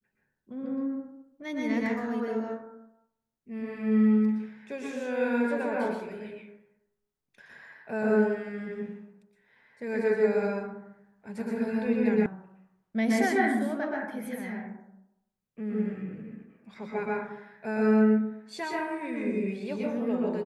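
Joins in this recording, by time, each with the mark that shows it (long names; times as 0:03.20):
0:12.26: cut off before it has died away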